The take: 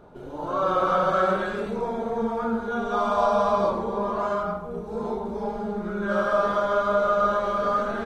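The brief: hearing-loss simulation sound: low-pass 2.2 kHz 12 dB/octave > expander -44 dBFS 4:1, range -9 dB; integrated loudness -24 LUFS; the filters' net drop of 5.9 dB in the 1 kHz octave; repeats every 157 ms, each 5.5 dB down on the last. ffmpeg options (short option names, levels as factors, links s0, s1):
-af "lowpass=2200,equalizer=f=1000:t=o:g=-7.5,aecho=1:1:157|314|471|628|785|942|1099:0.531|0.281|0.149|0.079|0.0419|0.0222|0.0118,agate=range=0.355:threshold=0.00631:ratio=4,volume=1.33"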